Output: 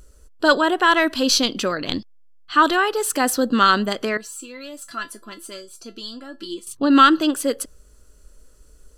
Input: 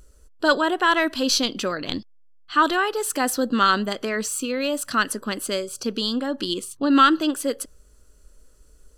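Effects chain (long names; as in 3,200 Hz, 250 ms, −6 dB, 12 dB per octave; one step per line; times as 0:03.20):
0:04.17–0:06.67: tuned comb filter 340 Hz, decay 0.17 s, harmonics all, mix 90%
level +3 dB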